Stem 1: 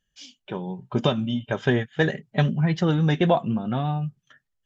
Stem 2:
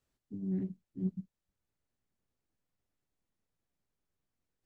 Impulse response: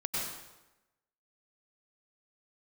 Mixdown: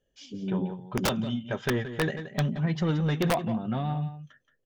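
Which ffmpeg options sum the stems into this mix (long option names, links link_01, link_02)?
-filter_complex "[0:a]highshelf=frequency=5300:gain=-3,asoftclip=type=tanh:threshold=-14.5dB,volume=-9dB,asplit=2[link_01][link_02];[link_02]volume=-11.5dB[link_03];[1:a]lowpass=frequency=520:width_type=q:width=5.1,volume=-3dB[link_04];[link_03]aecho=0:1:175:1[link_05];[link_01][link_04][link_05]amix=inputs=3:normalize=0,acontrast=31,aeval=exprs='(mod(8.41*val(0)+1,2)-1)/8.41':channel_layout=same"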